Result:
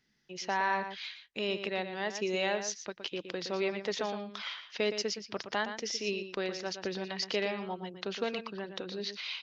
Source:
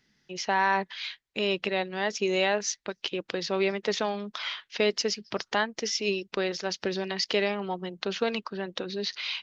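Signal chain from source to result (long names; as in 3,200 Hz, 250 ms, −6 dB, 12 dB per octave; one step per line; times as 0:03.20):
slap from a distant wall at 20 metres, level −9 dB
level −6 dB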